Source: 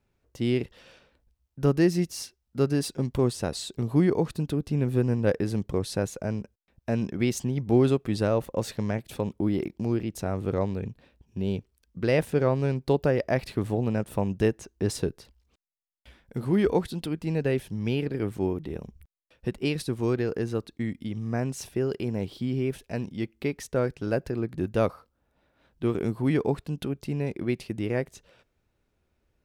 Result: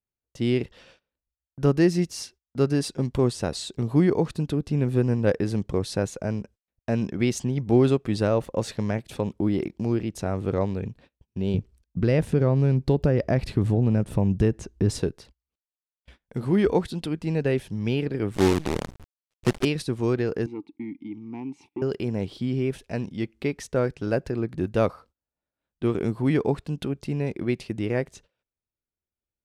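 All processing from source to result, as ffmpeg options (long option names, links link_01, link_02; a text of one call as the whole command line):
ffmpeg -i in.wav -filter_complex "[0:a]asettb=1/sr,asplit=3[link_01][link_02][link_03];[link_01]atrim=end=11.544[link_04];[link_02]atrim=start=11.54:end=14.99,asetpts=PTS-STARTPTS,afade=type=in:duration=0.004:curve=qsin,afade=type=out:start_time=3.446:duration=0.004:curve=qsin,lowshelf=frequency=300:gain=11.5,acompressor=threshold=-21dB:ratio=2:attack=3.2:release=140:knee=1:detection=peak[link_05];[link_03]atrim=start=14.986[link_06];[link_04][link_05]acrossfade=duration=0.004:curve1=hsin:curve2=qsin[link_07];[link_07][link_06]acrossfade=duration=0.004:curve1=qsin:curve2=hsin,asettb=1/sr,asplit=3[link_08][link_09][link_10];[link_08]atrim=end=18.344[link_11];[link_09]atrim=start=18.34:end=19.65,asetpts=PTS-STARTPTS,afade=type=in:duration=0.004:curve=qsin,afade=type=out:start_time=1.306:duration=0.004:curve=qsin,acontrast=34,acrusher=bits=5:dc=4:mix=0:aa=0.000001[link_12];[link_10]atrim=start=19.646[link_13];[link_11][link_12]acrossfade=duration=0.004:curve1=hsin:curve2=qsin[link_14];[link_14][link_13]acrossfade=duration=0.004:curve1=qsin:curve2=hsin,asettb=1/sr,asplit=3[link_15][link_16][link_17];[link_15]atrim=end=20.464[link_18];[link_16]atrim=start=20.46:end=21.82,asetpts=PTS-STARTPTS,afade=type=in:duration=0.004:curve=qsin,afade=type=out:start_time=1.356:duration=0.004:curve=qsin,aeval=exprs='0.158*sin(PI/2*1.41*val(0)/0.158)':channel_layout=same,asplit=3[link_19][link_20][link_21];[link_19]bandpass=frequency=300:width_type=q:width=8,volume=0dB[link_22];[link_20]bandpass=frequency=870:width_type=q:width=8,volume=-6dB[link_23];[link_21]bandpass=frequency=2240:width_type=q:width=8,volume=-9dB[link_24];[link_22][link_23][link_24]amix=inputs=3:normalize=0[link_25];[link_17]atrim=start=21.816[link_26];[link_18][link_25]acrossfade=duration=0.004:curve1=hsin:curve2=qsin[link_27];[link_27][link_26]acrossfade=duration=0.004:curve1=qsin:curve2=hsin,lowpass=9700,agate=range=-25dB:threshold=-52dB:ratio=16:detection=peak,volume=2dB" out.wav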